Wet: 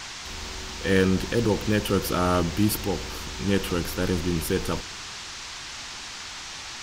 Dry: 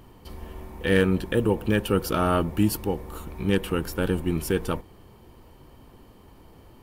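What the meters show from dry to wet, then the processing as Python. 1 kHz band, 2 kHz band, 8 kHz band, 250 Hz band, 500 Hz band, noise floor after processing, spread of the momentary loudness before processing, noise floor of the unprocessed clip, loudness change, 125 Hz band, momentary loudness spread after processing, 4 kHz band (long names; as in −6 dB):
+0.5 dB, +1.0 dB, +7.0 dB, −0.5 dB, −0.5 dB, −38 dBFS, 17 LU, −52 dBFS, −1.5 dB, 0.0 dB, 12 LU, +6.5 dB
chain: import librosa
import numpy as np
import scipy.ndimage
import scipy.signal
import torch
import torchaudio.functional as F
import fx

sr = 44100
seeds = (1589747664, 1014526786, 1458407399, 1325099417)

y = fx.transient(x, sr, attack_db=-2, sustain_db=3)
y = fx.dmg_noise_band(y, sr, seeds[0], low_hz=740.0, high_hz=6500.0, level_db=-38.0)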